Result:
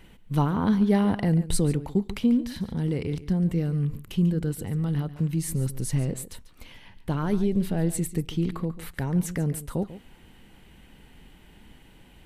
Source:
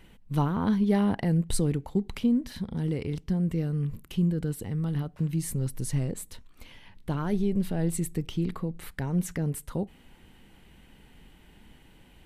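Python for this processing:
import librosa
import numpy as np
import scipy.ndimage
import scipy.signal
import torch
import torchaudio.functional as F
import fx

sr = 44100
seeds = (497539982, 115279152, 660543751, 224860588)

y = x + 10.0 ** (-15.0 / 20.0) * np.pad(x, (int(142 * sr / 1000.0), 0))[:len(x)]
y = F.gain(torch.from_numpy(y), 2.5).numpy()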